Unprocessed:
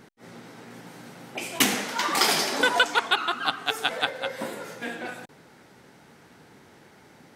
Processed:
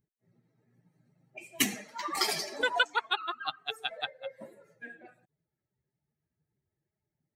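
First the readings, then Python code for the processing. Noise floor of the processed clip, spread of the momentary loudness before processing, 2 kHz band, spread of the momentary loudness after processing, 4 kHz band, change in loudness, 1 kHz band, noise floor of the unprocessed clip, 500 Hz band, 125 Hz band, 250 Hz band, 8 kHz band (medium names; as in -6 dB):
under -85 dBFS, 23 LU, -7.5 dB, 20 LU, -8.0 dB, -6.5 dB, -8.0 dB, -54 dBFS, -8.5 dB, -9.5 dB, -8.5 dB, -8.0 dB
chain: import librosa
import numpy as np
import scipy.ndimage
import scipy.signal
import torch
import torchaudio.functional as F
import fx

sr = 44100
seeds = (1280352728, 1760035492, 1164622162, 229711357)

y = fx.bin_expand(x, sr, power=2.0)
y = F.gain(torch.from_numpy(y), -3.5).numpy()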